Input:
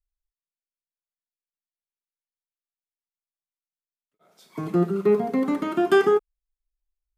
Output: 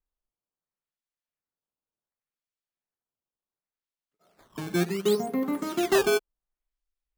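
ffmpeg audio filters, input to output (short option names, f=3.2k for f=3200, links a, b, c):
-af "acrusher=samples=13:mix=1:aa=0.000001:lfo=1:lforange=20.8:lforate=0.69,volume=-4.5dB"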